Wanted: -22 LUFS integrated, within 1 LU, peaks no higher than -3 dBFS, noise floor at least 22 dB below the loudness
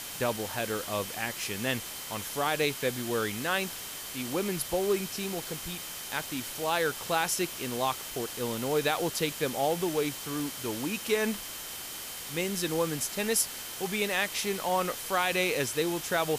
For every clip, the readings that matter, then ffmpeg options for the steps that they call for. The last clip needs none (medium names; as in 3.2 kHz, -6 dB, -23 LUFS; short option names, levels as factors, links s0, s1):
steady tone 3.1 kHz; tone level -49 dBFS; noise floor -40 dBFS; noise floor target -53 dBFS; loudness -30.5 LUFS; peak level -13.5 dBFS; loudness target -22.0 LUFS
-> -af "bandreject=f=3100:w=30"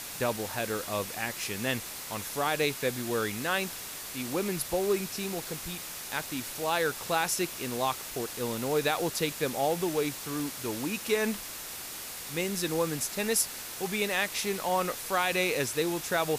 steady tone not found; noise floor -41 dBFS; noise floor target -53 dBFS
-> -af "afftdn=nr=12:nf=-41"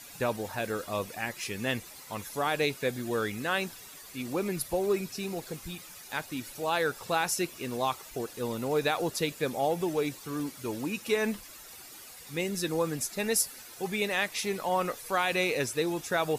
noise floor -48 dBFS; noise floor target -53 dBFS
-> -af "afftdn=nr=6:nf=-48"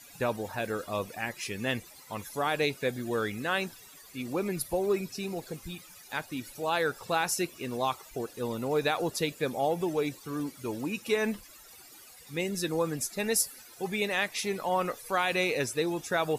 noise floor -52 dBFS; noise floor target -54 dBFS
-> -af "afftdn=nr=6:nf=-52"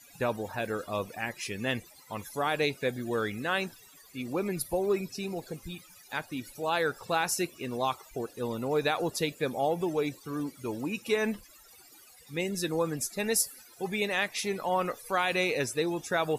noise floor -55 dBFS; loudness -31.5 LUFS; peak level -13.5 dBFS; loudness target -22.0 LUFS
-> -af "volume=2.99"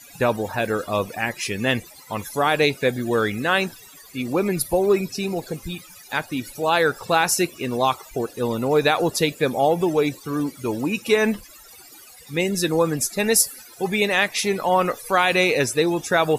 loudness -22.0 LUFS; peak level -4.0 dBFS; noise floor -46 dBFS